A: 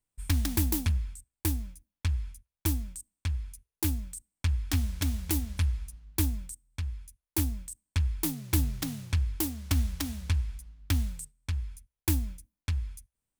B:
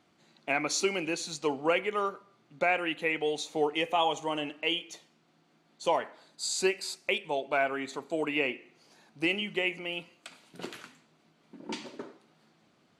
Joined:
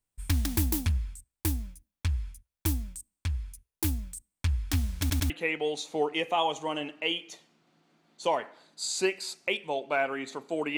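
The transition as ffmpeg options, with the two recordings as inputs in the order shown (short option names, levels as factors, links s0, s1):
-filter_complex "[0:a]apad=whole_dur=10.77,atrim=end=10.77,asplit=3[s0][s1][s2];[s0]atrim=end=5.102[s3];[s1]atrim=start=4.998:end=5.102[s4];[s2]atrim=start=4.998:end=5.102[s5];[1:a]atrim=start=2.908:end=8.38[s6];[s3][s4]acrossfade=d=0.004:c1=hsin:c2=hsin[s7];[s7][s5]acrossfade=d=0.004:c1=hsin:c2=hsin[s8];[s8][s6]acrossfade=d=0.004:c1=hsin:c2=hsin"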